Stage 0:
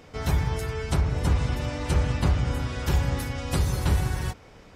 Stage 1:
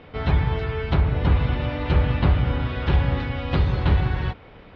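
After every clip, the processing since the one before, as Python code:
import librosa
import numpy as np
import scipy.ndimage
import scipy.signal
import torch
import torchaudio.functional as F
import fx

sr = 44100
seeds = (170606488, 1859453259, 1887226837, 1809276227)

y = scipy.signal.sosfilt(scipy.signal.butter(6, 3800.0, 'lowpass', fs=sr, output='sos'), x)
y = y * librosa.db_to_amplitude(4.0)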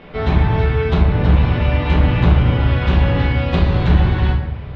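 y = fx.cheby_harmonics(x, sr, harmonics=(5,), levels_db=(-16,), full_scale_db=-7.0)
y = fx.room_shoebox(y, sr, seeds[0], volume_m3=220.0, walls='mixed', distance_m=1.2)
y = y * librosa.db_to_amplitude(-1.0)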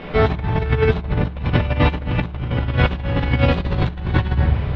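y = fx.over_compress(x, sr, threshold_db=-19.0, ratio=-0.5)
y = y * librosa.db_to_amplitude(1.5)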